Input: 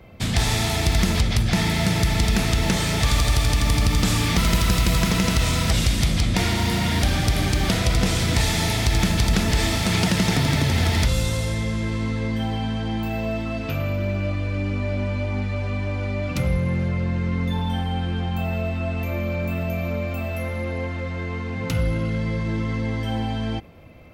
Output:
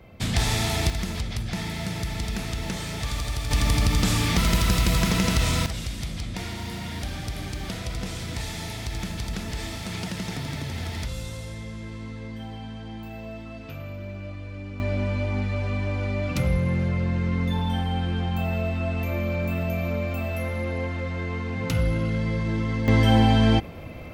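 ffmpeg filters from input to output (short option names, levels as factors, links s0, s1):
-af "asetnsamples=n=441:p=0,asendcmd='0.9 volume volume -9.5dB;3.51 volume volume -2dB;5.66 volume volume -11.5dB;14.8 volume volume -1dB;22.88 volume volume 8dB',volume=0.75"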